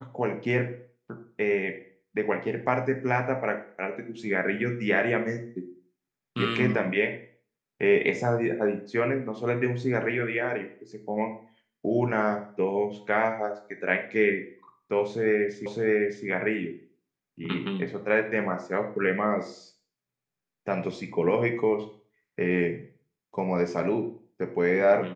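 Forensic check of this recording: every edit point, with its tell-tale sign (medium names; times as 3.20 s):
15.66 s: repeat of the last 0.61 s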